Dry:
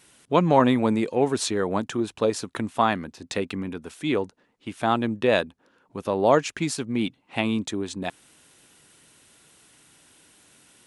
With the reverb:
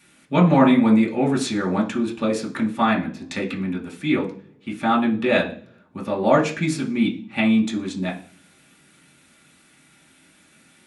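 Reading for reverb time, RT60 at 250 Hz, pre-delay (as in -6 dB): 0.45 s, 0.75 s, 3 ms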